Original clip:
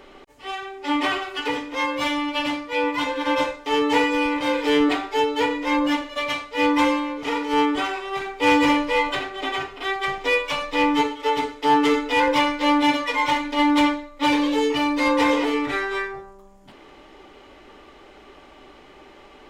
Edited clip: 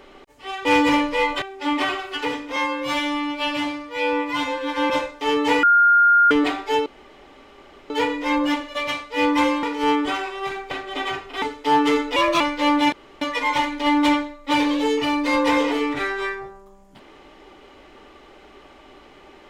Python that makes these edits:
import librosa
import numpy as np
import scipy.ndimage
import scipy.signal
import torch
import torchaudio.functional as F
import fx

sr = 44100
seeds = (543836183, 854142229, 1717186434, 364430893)

y = fx.edit(x, sr, fx.stretch_span(start_s=1.79, length_s=1.56, factor=1.5),
    fx.bleep(start_s=4.08, length_s=0.68, hz=1410.0, db=-11.0),
    fx.insert_room_tone(at_s=5.31, length_s=1.04),
    fx.cut(start_s=7.04, length_s=0.29),
    fx.move(start_s=8.41, length_s=0.77, to_s=0.65),
    fx.cut(start_s=9.89, length_s=1.51),
    fx.speed_span(start_s=12.14, length_s=0.28, speed=1.15),
    fx.insert_room_tone(at_s=12.94, length_s=0.29), tone=tone)